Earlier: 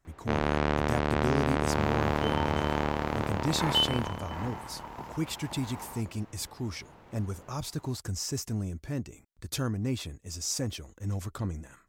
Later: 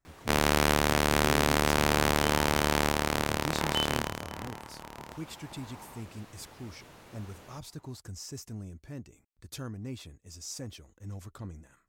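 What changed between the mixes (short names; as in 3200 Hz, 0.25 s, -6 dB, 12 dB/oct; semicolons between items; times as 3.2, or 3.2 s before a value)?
speech -8.5 dB; first sound: remove tape spacing loss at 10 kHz 30 dB; second sound -6.5 dB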